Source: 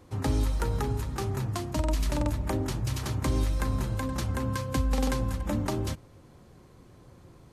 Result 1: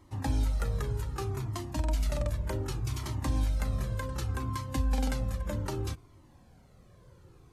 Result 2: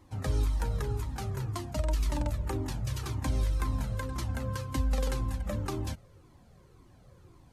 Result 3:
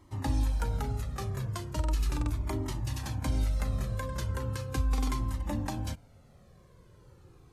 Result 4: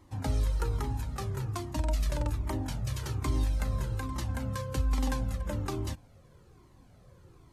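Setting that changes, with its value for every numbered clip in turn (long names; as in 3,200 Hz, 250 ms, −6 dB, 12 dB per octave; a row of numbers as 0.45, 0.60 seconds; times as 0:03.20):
flanger whose copies keep moving one way, speed: 0.65, 1.9, 0.38, 1.2 Hertz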